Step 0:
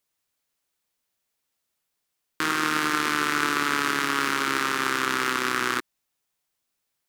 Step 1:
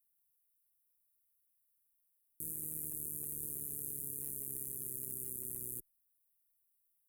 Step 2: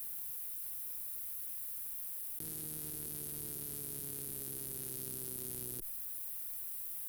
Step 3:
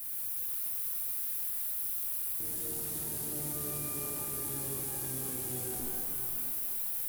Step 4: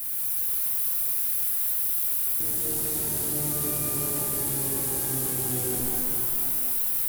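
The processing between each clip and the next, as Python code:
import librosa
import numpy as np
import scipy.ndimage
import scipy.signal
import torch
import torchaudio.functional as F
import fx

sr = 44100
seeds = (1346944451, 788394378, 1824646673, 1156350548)

y1 = scipy.signal.sosfilt(scipy.signal.cheby2(4, 50, [850.0, 5300.0], 'bandstop', fs=sr, output='sos'), x)
y1 = fx.tone_stack(y1, sr, knobs='10-0-10')
y1 = y1 * librosa.db_to_amplitude(4.0)
y2 = 10.0 ** (-34.5 / 20.0) * np.tanh(y1 / 10.0 ** (-34.5 / 20.0))
y2 = fx.env_flatten(y2, sr, amount_pct=100)
y2 = y2 * librosa.db_to_amplitude(3.0)
y3 = 10.0 ** (-34.5 / 20.0) * (np.abs((y2 / 10.0 ** (-34.5 / 20.0) + 3.0) % 4.0 - 2.0) - 1.0)
y3 = fx.rev_shimmer(y3, sr, seeds[0], rt60_s=3.0, semitones=12, shimmer_db=-8, drr_db=-5.0)
y3 = y3 * librosa.db_to_amplitude(1.5)
y4 = y3 + 10.0 ** (-5.5 / 20.0) * np.pad(y3, (int(196 * sr / 1000.0), 0))[:len(y3)]
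y4 = y4 * librosa.db_to_amplitude(8.0)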